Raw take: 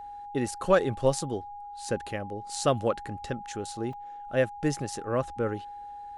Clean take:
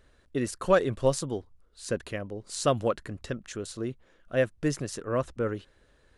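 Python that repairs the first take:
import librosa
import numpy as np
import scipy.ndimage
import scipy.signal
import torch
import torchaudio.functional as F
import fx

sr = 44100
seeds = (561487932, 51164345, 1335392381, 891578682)

y = fx.notch(x, sr, hz=820.0, q=30.0)
y = fx.fix_interpolate(y, sr, at_s=(3.93,), length_ms=3.3)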